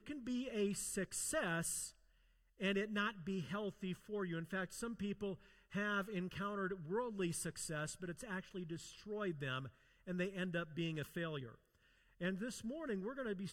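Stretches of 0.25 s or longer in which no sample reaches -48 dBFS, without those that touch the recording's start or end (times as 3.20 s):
1.89–2.60 s
5.35–5.73 s
9.68–10.08 s
11.54–12.21 s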